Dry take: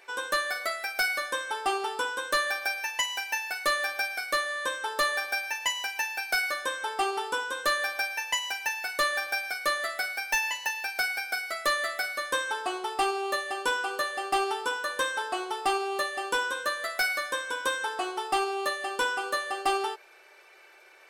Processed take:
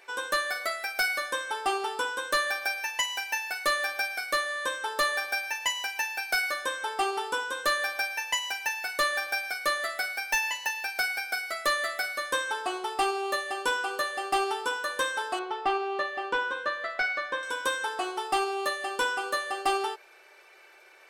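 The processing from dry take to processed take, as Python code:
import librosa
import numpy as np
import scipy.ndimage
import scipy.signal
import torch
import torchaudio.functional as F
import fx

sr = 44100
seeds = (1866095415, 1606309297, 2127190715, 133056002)

y = fx.lowpass(x, sr, hz=3000.0, slope=12, at=(15.39, 17.43))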